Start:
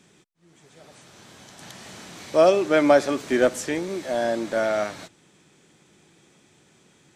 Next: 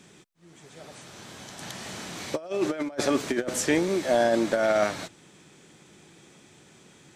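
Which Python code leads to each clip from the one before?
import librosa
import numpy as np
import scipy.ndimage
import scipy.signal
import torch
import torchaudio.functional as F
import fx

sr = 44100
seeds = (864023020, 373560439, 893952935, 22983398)

y = fx.over_compress(x, sr, threshold_db=-24.0, ratio=-0.5)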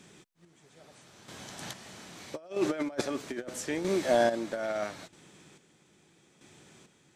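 y = fx.chopper(x, sr, hz=0.78, depth_pct=60, duty_pct=35)
y = F.gain(torch.from_numpy(y), -2.0).numpy()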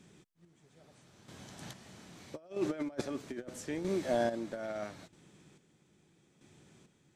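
y = fx.low_shelf(x, sr, hz=310.0, db=9.0)
y = F.gain(torch.from_numpy(y), -8.5).numpy()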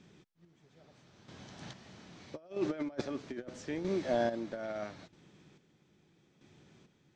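y = scipy.signal.sosfilt(scipy.signal.butter(4, 6000.0, 'lowpass', fs=sr, output='sos'), x)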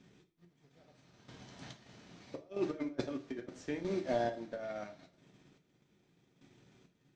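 y = fx.transient(x, sr, attack_db=4, sustain_db=-8)
y = fx.rev_double_slope(y, sr, seeds[0], early_s=0.32, late_s=1.6, knee_db=-25, drr_db=4.0)
y = F.gain(torch.from_numpy(y), -4.0).numpy()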